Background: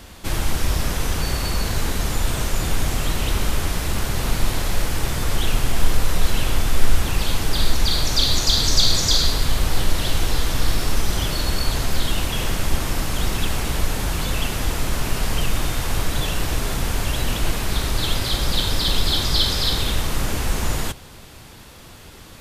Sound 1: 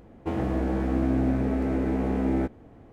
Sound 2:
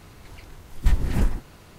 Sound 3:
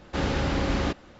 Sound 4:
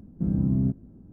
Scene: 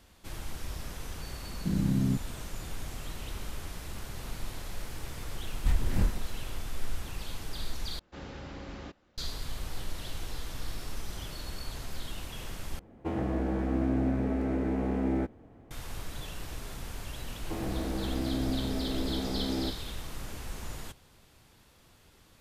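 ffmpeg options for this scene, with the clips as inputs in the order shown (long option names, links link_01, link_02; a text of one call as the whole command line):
ffmpeg -i bed.wav -i cue0.wav -i cue1.wav -i cue2.wav -i cue3.wav -filter_complex "[1:a]asplit=2[link_01][link_02];[0:a]volume=-17.5dB[link_03];[4:a]highpass=51[link_04];[2:a]asplit=2[link_05][link_06];[link_06]adelay=26,volume=-3dB[link_07];[link_05][link_07]amix=inputs=2:normalize=0[link_08];[link_02]acrusher=bits=9:mix=0:aa=0.000001[link_09];[link_03]asplit=3[link_10][link_11][link_12];[link_10]atrim=end=7.994[link_13];[3:a]atrim=end=1.19,asetpts=PTS-STARTPTS,volume=-17dB[link_14];[link_11]atrim=start=9.176:end=12.794[link_15];[link_01]atrim=end=2.92,asetpts=PTS-STARTPTS,volume=-4dB[link_16];[link_12]atrim=start=15.706[link_17];[link_04]atrim=end=1.12,asetpts=PTS-STARTPTS,volume=-3.5dB,afade=type=in:duration=0.004:curve=hsin,afade=type=out:start_time=1.116:duration=0.004:curve=hsin,adelay=1450[link_18];[link_08]atrim=end=1.78,asetpts=PTS-STARTPTS,volume=-8.5dB,afade=type=in:duration=0.004:curve=hsin,afade=type=out:start_time=1.776:duration=0.004:curve=hsin,adelay=4800[link_19];[link_09]atrim=end=2.92,asetpts=PTS-STARTPTS,volume=-7.5dB,afade=type=in:duration=0.004:curve=hsin,afade=type=out:start_time=2.916:duration=0.004:curve=hsin,adelay=17240[link_20];[link_13][link_14]acrossfade=duration=0.004:curve1=hsin:curve2=hsin[link_21];[link_21][link_15]acrossfade=duration=0.004:curve1=hsin:curve2=hsin[link_22];[link_22][link_16]acrossfade=duration=0.004:curve1=hsin:curve2=hsin[link_23];[link_23][link_17]acrossfade=duration=0.004:curve1=hsin:curve2=hsin[link_24];[link_24][link_18][link_19][link_20]amix=inputs=4:normalize=0" out.wav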